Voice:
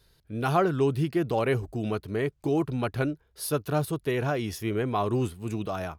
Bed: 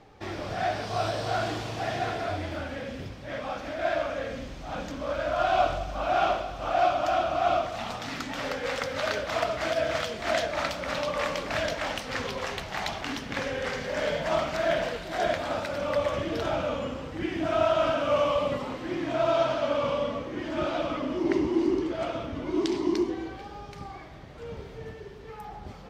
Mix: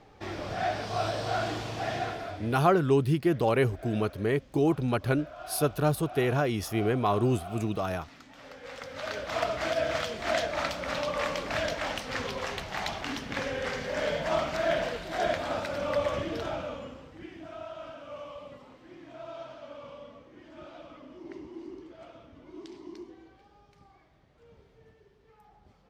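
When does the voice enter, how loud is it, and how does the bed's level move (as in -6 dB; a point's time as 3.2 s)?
2.10 s, +1.0 dB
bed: 1.97 s -1.5 dB
2.86 s -17.5 dB
8.38 s -17.5 dB
9.43 s -1.5 dB
16.16 s -1.5 dB
17.64 s -18 dB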